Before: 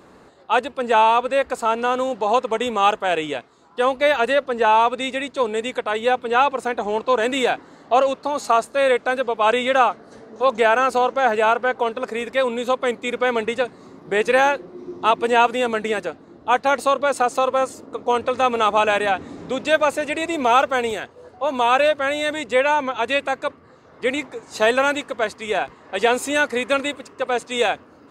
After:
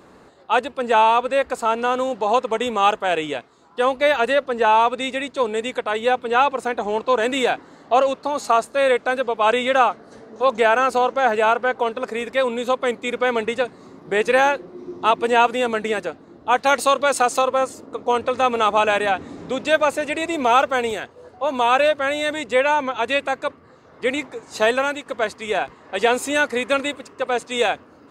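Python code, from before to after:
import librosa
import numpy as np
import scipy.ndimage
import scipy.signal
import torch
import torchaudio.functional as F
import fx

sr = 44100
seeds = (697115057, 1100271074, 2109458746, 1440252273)

y = fx.high_shelf(x, sr, hz=2100.0, db=7.5, at=(16.58, 17.42))
y = fx.edit(y, sr, fx.fade_out_to(start_s=24.61, length_s=0.45, floor_db=-7.0), tone=tone)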